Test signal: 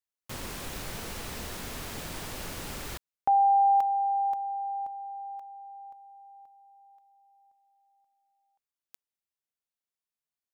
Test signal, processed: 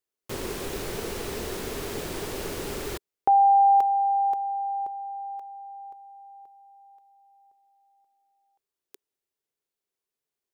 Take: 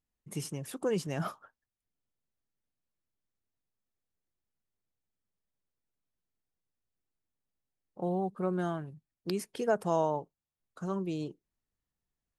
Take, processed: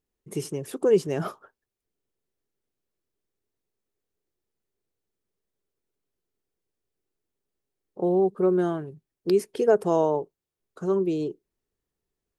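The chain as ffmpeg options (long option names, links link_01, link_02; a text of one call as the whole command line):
ffmpeg -i in.wav -af "equalizer=frequency=400:width=2.2:gain=13,volume=2.5dB" out.wav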